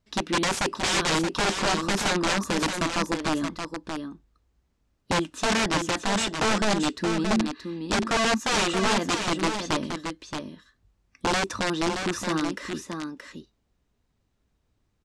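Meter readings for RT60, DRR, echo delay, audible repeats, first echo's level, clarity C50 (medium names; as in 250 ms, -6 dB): no reverb, no reverb, 625 ms, 1, -6.5 dB, no reverb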